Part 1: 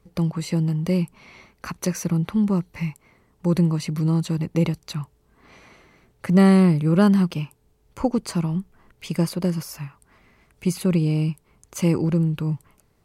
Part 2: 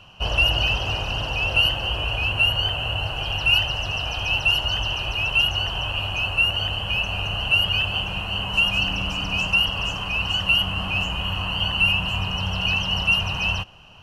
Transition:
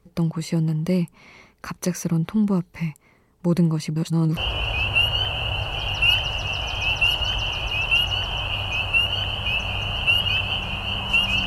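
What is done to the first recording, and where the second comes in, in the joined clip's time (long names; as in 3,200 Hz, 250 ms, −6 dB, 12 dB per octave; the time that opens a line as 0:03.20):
part 1
0:03.96–0:04.37: reverse
0:04.37: continue with part 2 from 0:01.81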